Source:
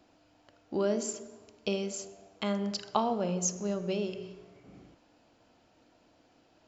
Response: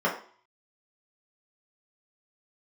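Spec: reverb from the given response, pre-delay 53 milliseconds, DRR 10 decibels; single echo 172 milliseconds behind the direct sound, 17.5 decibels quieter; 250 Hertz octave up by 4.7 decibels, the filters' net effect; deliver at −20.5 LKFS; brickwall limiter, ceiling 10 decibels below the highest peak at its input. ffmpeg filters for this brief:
-filter_complex "[0:a]equalizer=frequency=250:width_type=o:gain=6.5,alimiter=limit=-20.5dB:level=0:latency=1,aecho=1:1:172:0.133,asplit=2[link_01][link_02];[1:a]atrim=start_sample=2205,adelay=53[link_03];[link_02][link_03]afir=irnorm=-1:irlink=0,volume=-23.5dB[link_04];[link_01][link_04]amix=inputs=2:normalize=0,volume=10.5dB"

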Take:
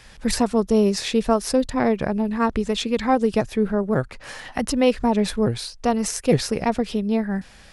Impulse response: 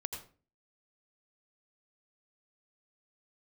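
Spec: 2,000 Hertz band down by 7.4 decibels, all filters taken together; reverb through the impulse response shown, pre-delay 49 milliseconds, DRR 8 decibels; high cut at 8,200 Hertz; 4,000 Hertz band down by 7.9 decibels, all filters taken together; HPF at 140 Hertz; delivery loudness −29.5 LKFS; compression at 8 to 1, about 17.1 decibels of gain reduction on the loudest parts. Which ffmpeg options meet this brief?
-filter_complex "[0:a]highpass=140,lowpass=8200,equalizer=frequency=2000:width_type=o:gain=-7.5,equalizer=frequency=4000:width_type=o:gain=-8,acompressor=threshold=-32dB:ratio=8,asplit=2[link_01][link_02];[1:a]atrim=start_sample=2205,adelay=49[link_03];[link_02][link_03]afir=irnorm=-1:irlink=0,volume=-8dB[link_04];[link_01][link_04]amix=inputs=2:normalize=0,volume=6.5dB"

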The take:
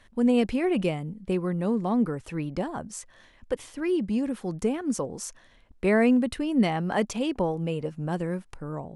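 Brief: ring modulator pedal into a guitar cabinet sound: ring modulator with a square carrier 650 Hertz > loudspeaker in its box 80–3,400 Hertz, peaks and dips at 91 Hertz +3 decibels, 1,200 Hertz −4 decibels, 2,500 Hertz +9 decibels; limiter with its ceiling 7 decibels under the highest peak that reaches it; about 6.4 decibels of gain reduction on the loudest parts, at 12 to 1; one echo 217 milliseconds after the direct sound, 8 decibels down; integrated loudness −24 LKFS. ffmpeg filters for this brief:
ffmpeg -i in.wav -af "acompressor=threshold=-23dB:ratio=12,alimiter=limit=-22.5dB:level=0:latency=1,aecho=1:1:217:0.398,aeval=exprs='val(0)*sgn(sin(2*PI*650*n/s))':channel_layout=same,highpass=80,equalizer=frequency=91:width_type=q:width=4:gain=3,equalizer=frequency=1200:width_type=q:width=4:gain=-4,equalizer=frequency=2500:width_type=q:width=4:gain=9,lowpass=frequency=3400:width=0.5412,lowpass=frequency=3400:width=1.3066,volume=6dB" out.wav

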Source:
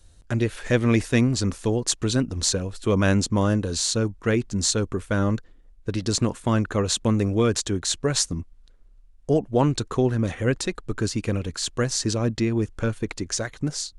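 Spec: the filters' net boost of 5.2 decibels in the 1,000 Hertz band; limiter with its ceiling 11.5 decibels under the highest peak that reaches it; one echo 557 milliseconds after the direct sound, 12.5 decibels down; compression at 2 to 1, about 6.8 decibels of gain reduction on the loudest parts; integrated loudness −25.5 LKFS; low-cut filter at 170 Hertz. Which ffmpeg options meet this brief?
ffmpeg -i in.wav -af "highpass=170,equalizer=frequency=1000:width_type=o:gain=6.5,acompressor=threshold=-26dB:ratio=2,alimiter=limit=-19.5dB:level=0:latency=1,aecho=1:1:557:0.237,volume=6dB" out.wav

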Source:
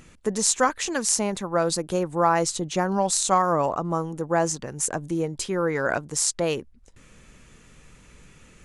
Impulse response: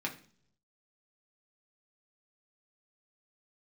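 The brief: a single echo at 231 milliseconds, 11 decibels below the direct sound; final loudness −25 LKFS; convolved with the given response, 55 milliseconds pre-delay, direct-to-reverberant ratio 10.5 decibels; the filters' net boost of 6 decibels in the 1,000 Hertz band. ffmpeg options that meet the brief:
-filter_complex "[0:a]equalizer=frequency=1000:width_type=o:gain=7.5,aecho=1:1:231:0.282,asplit=2[link_01][link_02];[1:a]atrim=start_sample=2205,adelay=55[link_03];[link_02][link_03]afir=irnorm=-1:irlink=0,volume=-14dB[link_04];[link_01][link_04]amix=inputs=2:normalize=0,volume=-4dB"

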